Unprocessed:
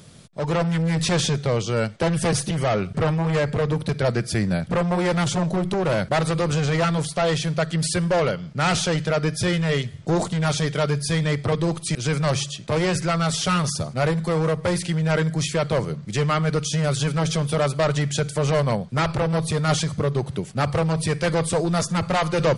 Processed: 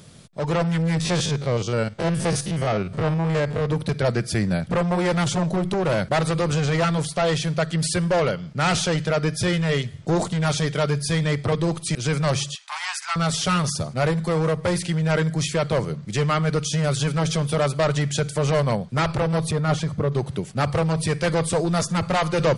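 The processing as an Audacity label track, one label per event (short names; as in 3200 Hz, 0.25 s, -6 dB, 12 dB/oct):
1.000000	3.700000	stepped spectrum every 50 ms
12.550000	13.160000	steep high-pass 790 Hz 72 dB/oct
19.510000	20.120000	high shelf 2800 Hz -11 dB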